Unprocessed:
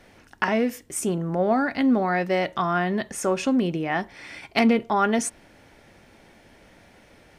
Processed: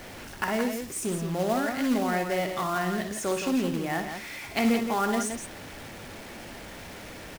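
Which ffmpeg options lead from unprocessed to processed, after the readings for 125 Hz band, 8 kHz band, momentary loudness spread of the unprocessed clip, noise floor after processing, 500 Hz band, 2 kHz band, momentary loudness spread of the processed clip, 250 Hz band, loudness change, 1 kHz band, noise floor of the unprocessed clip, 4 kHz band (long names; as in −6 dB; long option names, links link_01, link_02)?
−3.5 dB, −1.5 dB, 8 LU, −43 dBFS, −4.5 dB, −4.0 dB, 16 LU, −4.5 dB, −4.5 dB, −4.5 dB, −54 dBFS, −1.5 dB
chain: -af "aeval=exprs='val(0)+0.5*0.0251*sgn(val(0))':channel_layout=same,acrusher=bits=3:mode=log:mix=0:aa=0.000001,aecho=1:1:61.22|169.1:0.355|0.447,volume=-7dB"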